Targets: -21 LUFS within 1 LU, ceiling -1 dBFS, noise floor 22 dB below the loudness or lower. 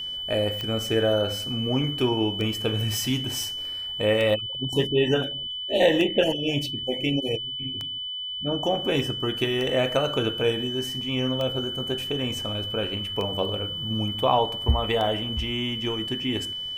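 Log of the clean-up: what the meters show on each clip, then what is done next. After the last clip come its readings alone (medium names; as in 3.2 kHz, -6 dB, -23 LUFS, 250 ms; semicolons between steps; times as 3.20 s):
clicks found 9; steady tone 3 kHz; tone level -30 dBFS; loudness -25.0 LUFS; peak level -6.5 dBFS; loudness target -21.0 LUFS
-> de-click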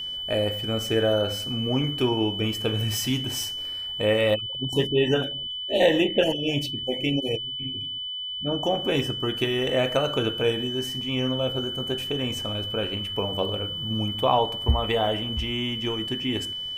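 clicks found 0; steady tone 3 kHz; tone level -30 dBFS
-> band-stop 3 kHz, Q 30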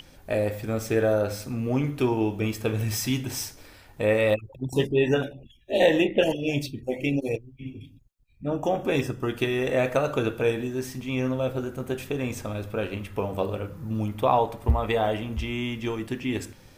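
steady tone not found; loudness -26.5 LUFS; peak level -7.0 dBFS; loudness target -21.0 LUFS
-> trim +5.5 dB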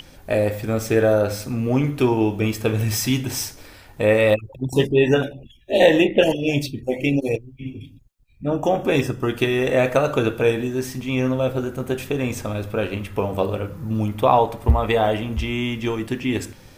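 loudness -21.0 LUFS; peak level -1.5 dBFS; noise floor -47 dBFS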